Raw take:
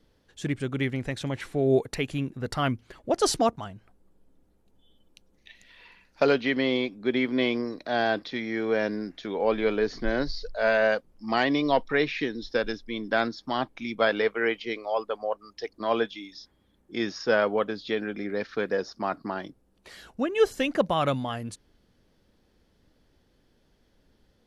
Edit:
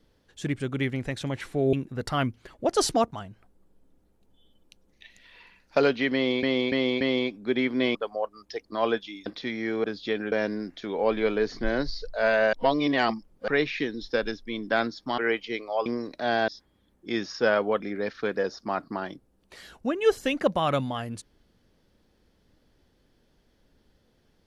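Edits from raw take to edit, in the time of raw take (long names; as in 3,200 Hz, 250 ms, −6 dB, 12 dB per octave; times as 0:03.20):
0:01.73–0:02.18: remove
0:06.59–0:06.88: repeat, 4 plays
0:07.53–0:08.15: swap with 0:15.03–0:16.34
0:10.94–0:11.89: reverse
0:13.59–0:14.35: remove
0:17.66–0:18.14: move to 0:08.73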